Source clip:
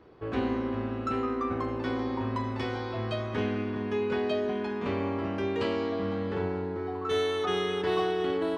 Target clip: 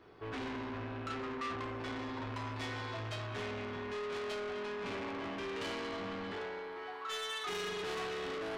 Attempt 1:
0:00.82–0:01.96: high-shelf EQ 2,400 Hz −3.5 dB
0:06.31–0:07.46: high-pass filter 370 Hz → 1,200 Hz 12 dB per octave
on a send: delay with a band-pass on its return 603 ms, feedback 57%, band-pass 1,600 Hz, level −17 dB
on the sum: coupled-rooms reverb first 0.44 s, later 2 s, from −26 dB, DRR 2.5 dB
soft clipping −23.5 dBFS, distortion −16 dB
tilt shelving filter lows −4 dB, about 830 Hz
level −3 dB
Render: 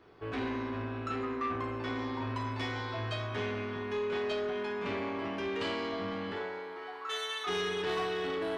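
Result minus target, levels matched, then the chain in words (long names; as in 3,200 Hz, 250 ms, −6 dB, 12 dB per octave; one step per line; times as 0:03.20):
soft clipping: distortion −8 dB
0:00.82–0:01.96: high-shelf EQ 2,400 Hz −3.5 dB
0:06.31–0:07.46: high-pass filter 370 Hz → 1,200 Hz 12 dB per octave
on a send: delay with a band-pass on its return 603 ms, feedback 57%, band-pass 1,600 Hz, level −17 dB
on the sum: coupled-rooms reverb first 0.44 s, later 2 s, from −26 dB, DRR 2.5 dB
soft clipping −33 dBFS, distortion −8 dB
tilt shelving filter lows −4 dB, about 830 Hz
level −3 dB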